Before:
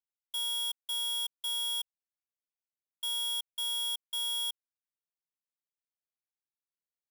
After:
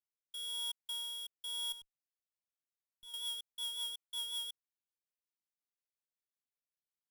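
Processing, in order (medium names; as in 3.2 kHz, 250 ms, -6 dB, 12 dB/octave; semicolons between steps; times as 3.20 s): 1.72–3.14 s: valve stage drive 45 dB, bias 0.25; rotary cabinet horn 1 Hz, later 5.5 Hz, at 1.57 s; trim -4.5 dB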